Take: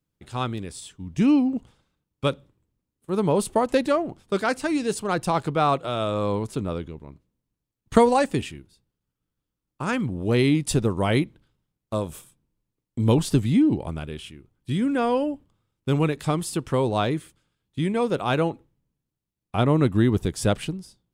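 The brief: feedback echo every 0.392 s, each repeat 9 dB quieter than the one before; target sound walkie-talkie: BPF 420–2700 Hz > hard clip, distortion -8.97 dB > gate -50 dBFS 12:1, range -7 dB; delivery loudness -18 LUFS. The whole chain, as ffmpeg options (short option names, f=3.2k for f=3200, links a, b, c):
-af "highpass=420,lowpass=2.7k,aecho=1:1:392|784|1176|1568:0.355|0.124|0.0435|0.0152,asoftclip=type=hard:threshold=-22.5dB,agate=range=-7dB:threshold=-50dB:ratio=12,volume=13dB"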